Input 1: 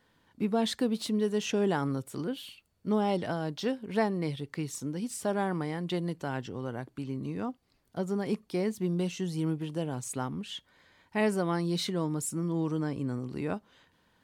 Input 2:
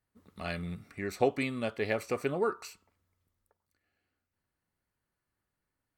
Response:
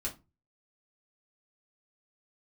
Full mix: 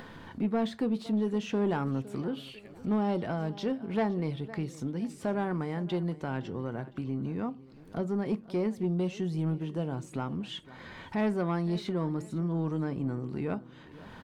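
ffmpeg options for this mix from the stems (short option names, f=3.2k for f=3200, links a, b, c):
-filter_complex "[0:a]deesser=0.9,lowpass=f=2.1k:p=1,acompressor=mode=upward:threshold=-31dB:ratio=2.5,volume=-0.5dB,asplit=4[a][b][c][d];[b]volume=-12dB[e];[c]volume=-18dB[f];[1:a]acompressor=threshold=-35dB:ratio=6,adelay=750,volume=-17dB[g];[d]apad=whole_len=296698[h];[g][h]sidechaincompress=threshold=-33dB:ratio=8:attack=16:release=390[i];[2:a]atrim=start_sample=2205[j];[e][j]afir=irnorm=-1:irlink=0[k];[f]aecho=0:1:511|1022|1533|2044|2555:1|0.36|0.13|0.0467|0.0168[l];[a][i][k][l]amix=inputs=4:normalize=0,asoftclip=type=tanh:threshold=-21dB"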